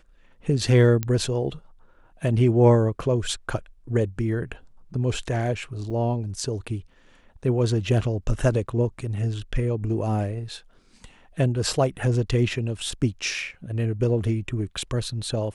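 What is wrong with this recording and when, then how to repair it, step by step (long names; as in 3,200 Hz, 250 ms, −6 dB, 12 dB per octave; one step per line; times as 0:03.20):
0:01.03: click −12 dBFS
0:05.90–0:05.91: drop-out 5 ms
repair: click removal
repair the gap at 0:05.90, 5 ms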